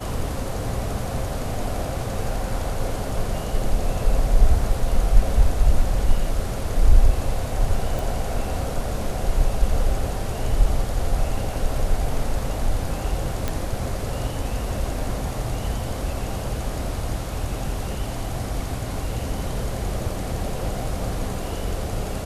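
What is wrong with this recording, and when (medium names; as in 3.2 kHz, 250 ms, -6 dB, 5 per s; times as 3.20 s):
7.99 s: pop
13.48 s: pop -10 dBFS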